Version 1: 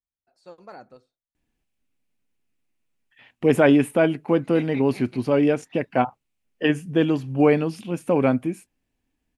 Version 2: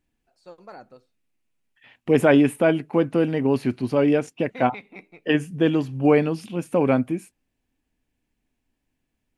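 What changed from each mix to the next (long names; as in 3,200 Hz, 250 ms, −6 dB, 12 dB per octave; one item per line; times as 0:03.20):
second voice: entry −1.35 s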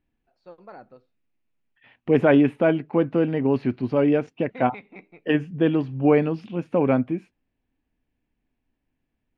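master: add high-frequency loss of the air 250 metres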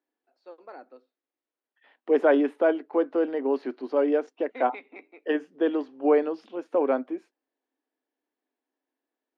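second voice: add graphic EQ with 15 bands 250 Hz −9 dB, 2,500 Hz −11 dB, 10,000 Hz −4 dB
master: add Chebyshev high-pass filter 260 Hz, order 5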